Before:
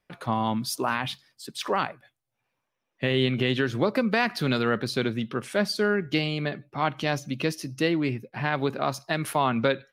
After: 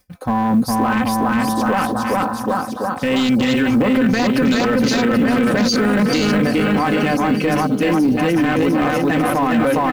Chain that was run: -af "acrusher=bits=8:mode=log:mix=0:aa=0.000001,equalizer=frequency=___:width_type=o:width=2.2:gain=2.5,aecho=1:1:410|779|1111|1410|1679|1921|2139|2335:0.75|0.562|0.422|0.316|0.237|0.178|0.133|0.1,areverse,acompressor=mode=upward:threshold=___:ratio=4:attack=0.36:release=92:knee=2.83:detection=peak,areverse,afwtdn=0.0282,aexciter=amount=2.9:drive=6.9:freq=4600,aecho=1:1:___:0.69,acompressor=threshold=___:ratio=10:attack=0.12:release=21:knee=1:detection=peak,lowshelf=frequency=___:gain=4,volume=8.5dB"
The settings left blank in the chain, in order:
77, -38dB, 3.9, -21dB, 320